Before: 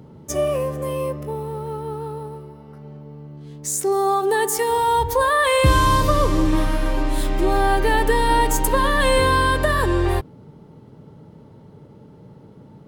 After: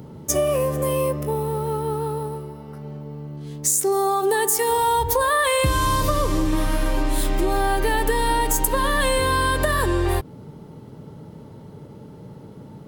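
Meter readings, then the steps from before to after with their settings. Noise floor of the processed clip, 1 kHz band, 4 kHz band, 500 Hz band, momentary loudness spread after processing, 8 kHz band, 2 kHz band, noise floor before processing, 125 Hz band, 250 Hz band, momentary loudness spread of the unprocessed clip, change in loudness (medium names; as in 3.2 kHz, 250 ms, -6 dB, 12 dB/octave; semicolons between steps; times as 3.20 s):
-42 dBFS, -2.5 dB, -1.0 dB, -1.5 dB, 17 LU, +3.5 dB, -2.5 dB, -46 dBFS, -2.0 dB, -2.0 dB, 15 LU, -1.5 dB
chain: treble shelf 6.8 kHz +9 dB; compression, threshold -21 dBFS, peak gain reduction 10.5 dB; trim +4 dB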